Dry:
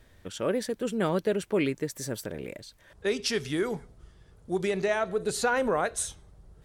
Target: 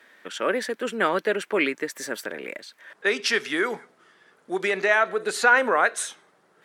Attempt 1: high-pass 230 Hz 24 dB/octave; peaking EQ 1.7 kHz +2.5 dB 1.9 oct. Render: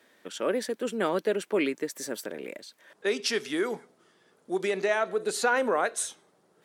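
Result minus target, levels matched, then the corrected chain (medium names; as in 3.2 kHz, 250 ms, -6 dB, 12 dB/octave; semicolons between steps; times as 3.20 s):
2 kHz band -5.0 dB
high-pass 230 Hz 24 dB/octave; peaking EQ 1.7 kHz +13 dB 1.9 oct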